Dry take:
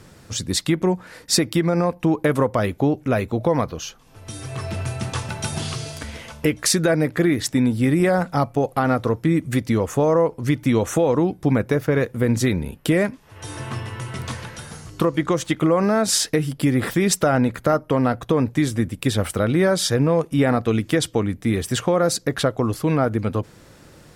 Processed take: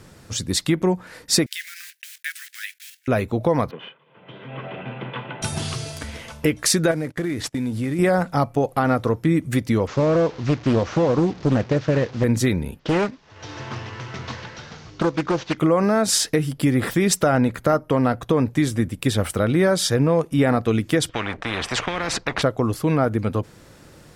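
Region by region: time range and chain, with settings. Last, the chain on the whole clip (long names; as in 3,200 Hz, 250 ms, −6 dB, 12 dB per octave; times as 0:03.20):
0:01.46–0:03.08: one scale factor per block 5 bits + Butterworth high-pass 1,600 Hz 72 dB per octave
0:03.71–0:05.42: lower of the sound and its delayed copy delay 2 ms + Chebyshev band-pass filter 130–3,300 Hz, order 5
0:06.91–0:07.99: variable-slope delta modulation 64 kbit/s + noise gate −31 dBFS, range −20 dB + downward compressor 3 to 1, threshold −23 dBFS
0:09.87–0:12.24: linear delta modulator 32 kbit/s, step −34 dBFS + high-pass filter 44 Hz 24 dB per octave + highs frequency-modulated by the lows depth 0.55 ms
0:12.79–0:15.58: variable-slope delta modulation 32 kbit/s + low-shelf EQ 150 Hz −6.5 dB + highs frequency-modulated by the lows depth 0.66 ms
0:21.09–0:22.42: mu-law and A-law mismatch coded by A + low-pass filter 2,000 Hz + every bin compressed towards the loudest bin 4 to 1
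whole clip: no processing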